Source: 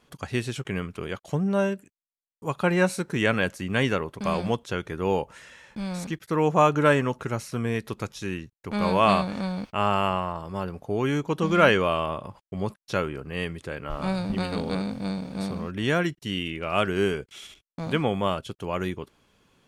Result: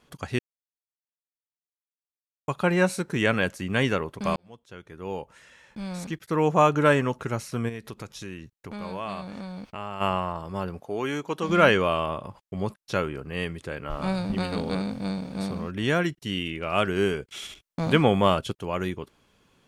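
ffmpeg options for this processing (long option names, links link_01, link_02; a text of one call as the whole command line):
ffmpeg -i in.wav -filter_complex "[0:a]asplit=3[link_01][link_02][link_03];[link_01]afade=type=out:start_time=7.68:duration=0.02[link_04];[link_02]acompressor=threshold=-36dB:ratio=2.5:attack=3.2:release=140:knee=1:detection=peak,afade=type=in:start_time=7.68:duration=0.02,afade=type=out:start_time=10:duration=0.02[link_05];[link_03]afade=type=in:start_time=10:duration=0.02[link_06];[link_04][link_05][link_06]amix=inputs=3:normalize=0,asettb=1/sr,asplit=3[link_07][link_08][link_09];[link_07]atrim=end=10.804[link_10];[link_08]atrim=start=10.8:end=11.49,asetpts=PTS-STARTPTS,afade=type=in:duration=0.004:curve=qsin,afade=type=out:start_time=0.686:duration=0.004:curve=qsin,highpass=frequency=400:poles=1[link_11];[link_09]atrim=start=11.486[link_12];[link_10][link_11]acrossfade=duration=0.004:curve1=hsin:curve2=qsin[link_13];[link_13][link_12]acrossfade=duration=0.004:curve1=qsin:curve2=hsin,asettb=1/sr,asplit=3[link_14][link_15][link_16];[link_14]atrim=end=17.324[link_17];[link_15]atrim=start=17.32:end=18.52,asetpts=PTS-STARTPTS,afade=type=in:duration=0.004:curve=qsin,afade=type=out:start_time=1.196:duration=0.004:curve=qsin,acontrast=31[link_18];[link_16]atrim=start=18.516[link_19];[link_17][link_18]acrossfade=duration=0.004:curve1=hsin:curve2=qsin[link_20];[link_20][link_19]acrossfade=duration=0.004:curve1=qsin:curve2=hsin,asplit=4[link_21][link_22][link_23][link_24];[link_21]atrim=end=0.39,asetpts=PTS-STARTPTS,afade=type=out:start_time=0.386:duration=0.004:curve=hsin[link_25];[link_22]atrim=start=0.39:end=2.48,asetpts=PTS-STARTPTS,volume=0[link_26];[link_23]atrim=start=2.48:end=4.36,asetpts=PTS-STARTPTS,afade=type=in:duration=0.004:curve=hsin,afade=type=out:start_time=1.876:duration=0.004:curve=hsin[link_27];[link_24]atrim=start=4.36,asetpts=PTS-STARTPTS,afade=type=in:duration=2.04[link_28];[link_25][link_26][link_27][link_28]concat=n=4:v=0:a=1" out.wav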